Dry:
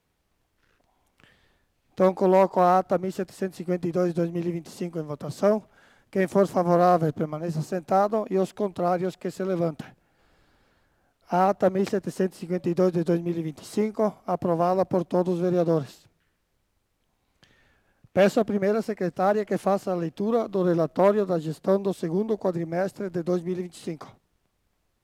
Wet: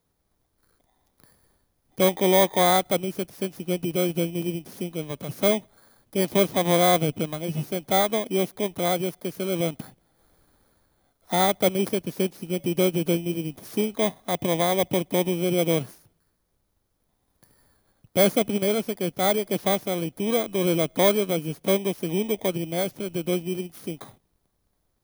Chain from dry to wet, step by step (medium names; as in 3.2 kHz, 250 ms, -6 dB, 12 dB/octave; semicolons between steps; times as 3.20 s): bit-reversed sample order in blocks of 16 samples